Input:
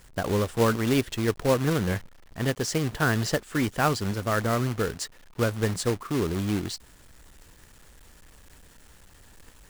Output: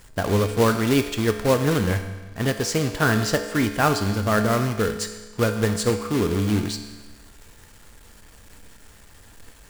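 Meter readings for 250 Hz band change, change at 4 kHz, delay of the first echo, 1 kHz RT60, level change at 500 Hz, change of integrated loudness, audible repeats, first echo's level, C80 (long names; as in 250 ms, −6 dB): +4.5 dB, +4.5 dB, no echo audible, 1.3 s, +4.5 dB, +4.0 dB, no echo audible, no echo audible, 10.0 dB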